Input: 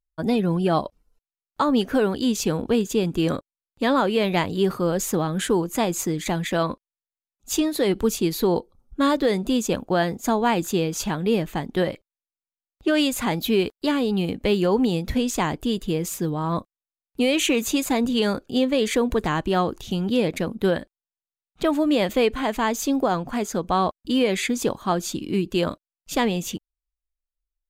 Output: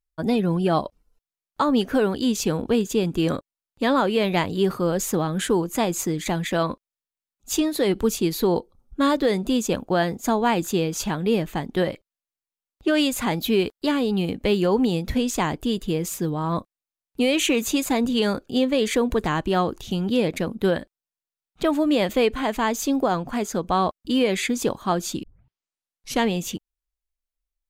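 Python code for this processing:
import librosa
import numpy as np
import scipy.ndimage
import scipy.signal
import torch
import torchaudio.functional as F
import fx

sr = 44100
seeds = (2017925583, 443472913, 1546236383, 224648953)

y = fx.edit(x, sr, fx.tape_start(start_s=25.23, length_s=1.03), tone=tone)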